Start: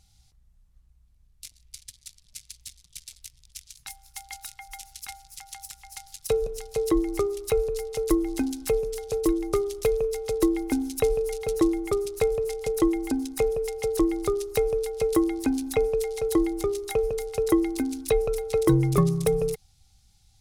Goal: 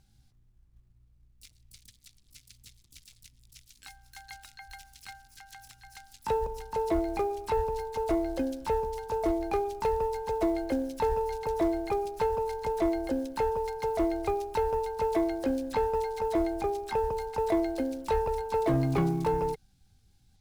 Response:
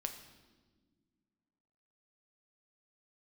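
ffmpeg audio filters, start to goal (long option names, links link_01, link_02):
-filter_complex "[0:a]aemphasis=mode=reproduction:type=50kf,acrossover=split=6100[link_01][link_02];[link_02]acompressor=threshold=-47dB:ratio=4:attack=1:release=60[link_03];[link_01][link_03]amix=inputs=2:normalize=0,asoftclip=type=tanh:threshold=-17.5dB,acrusher=bits=8:mode=log:mix=0:aa=0.000001,asplit=2[link_04][link_05];[link_05]asetrate=88200,aresample=44100,atempo=0.5,volume=-4dB[link_06];[link_04][link_06]amix=inputs=2:normalize=0,volume=-4dB"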